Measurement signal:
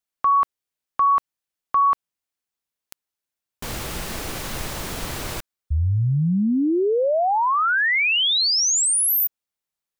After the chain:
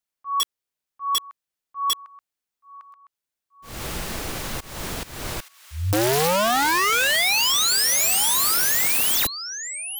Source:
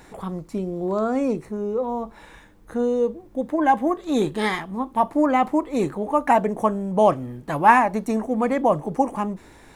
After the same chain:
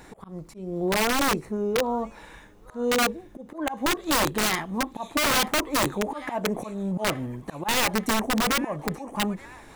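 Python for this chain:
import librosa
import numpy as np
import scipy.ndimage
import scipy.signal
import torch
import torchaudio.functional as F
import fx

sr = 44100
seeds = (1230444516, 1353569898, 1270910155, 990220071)

y = fx.auto_swell(x, sr, attack_ms=238.0)
y = fx.echo_wet_highpass(y, sr, ms=879, feedback_pct=54, hz=1600.0, wet_db=-13.0)
y = (np.mod(10.0 ** (17.0 / 20.0) * y + 1.0, 2.0) - 1.0) / 10.0 ** (17.0 / 20.0)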